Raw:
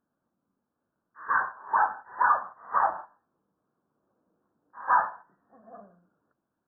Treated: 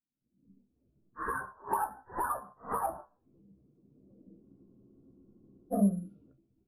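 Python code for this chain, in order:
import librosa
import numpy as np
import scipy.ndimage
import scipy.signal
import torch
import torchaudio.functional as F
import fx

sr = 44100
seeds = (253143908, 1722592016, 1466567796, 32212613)

p1 = fx.bin_expand(x, sr, power=1.5)
p2 = fx.recorder_agc(p1, sr, target_db=-19.0, rise_db_per_s=73.0, max_gain_db=30)
p3 = fx.low_shelf(p2, sr, hz=65.0, db=10.0)
p4 = (np.kron(scipy.signal.resample_poly(p3, 1, 4), np.eye(4)[0]) * 4)[:len(p3)]
p5 = fx.lowpass(p4, sr, hz=1700.0, slope=6)
p6 = fx.tilt_shelf(p5, sr, db=8.5, hz=690.0)
p7 = fx.env_lowpass(p6, sr, base_hz=1100.0, full_db=-24.5)
p8 = fx.comb_fb(p7, sr, f0_hz=66.0, decay_s=0.18, harmonics='all', damping=0.0, mix_pct=80)
p9 = 10.0 ** (-21.5 / 20.0) * np.tanh(p8 / 10.0 ** (-21.5 / 20.0))
p10 = p8 + (p9 * librosa.db_to_amplitude(-10.0))
p11 = fx.noise_reduce_blind(p10, sr, reduce_db=6)
p12 = fx.spec_freeze(p11, sr, seeds[0], at_s=4.44, hold_s=1.28)
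y = p12 * librosa.db_to_amplitude(-2.0)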